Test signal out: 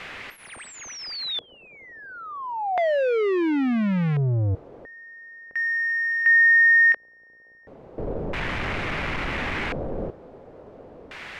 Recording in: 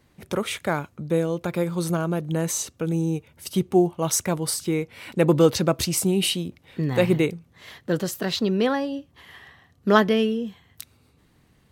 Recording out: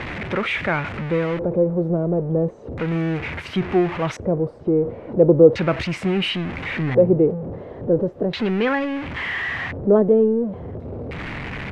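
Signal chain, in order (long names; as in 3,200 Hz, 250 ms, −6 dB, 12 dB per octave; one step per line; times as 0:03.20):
converter with a step at zero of −23.5 dBFS
auto-filter low-pass square 0.36 Hz 510–2,200 Hz
level −1.5 dB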